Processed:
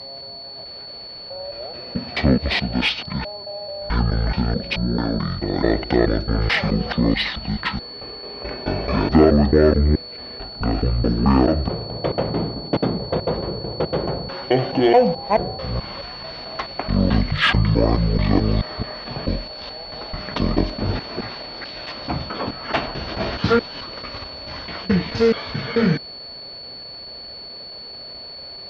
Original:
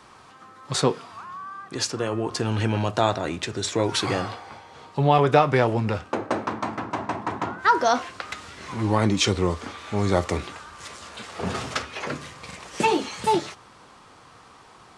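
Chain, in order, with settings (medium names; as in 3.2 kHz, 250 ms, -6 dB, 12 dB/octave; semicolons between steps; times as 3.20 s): slices played last to first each 113 ms, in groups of 6; whistle 8.5 kHz -39 dBFS; in parallel at -4.5 dB: saturation -16.5 dBFS, distortion -12 dB; on the sum: wide varispeed 0.522×; pre-echo 83 ms -24 dB; trim +1 dB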